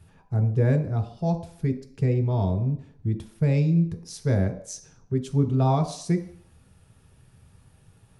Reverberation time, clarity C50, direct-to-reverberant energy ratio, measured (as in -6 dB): 0.55 s, 11.5 dB, 3.5 dB